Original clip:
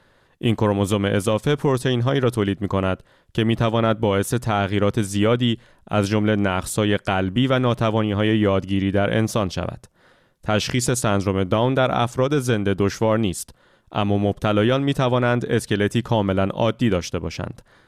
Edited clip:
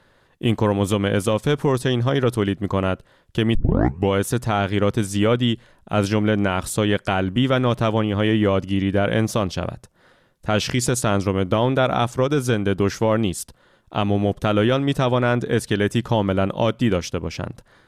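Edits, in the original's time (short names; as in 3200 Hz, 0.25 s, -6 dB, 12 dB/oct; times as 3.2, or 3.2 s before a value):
3.55 tape start 0.55 s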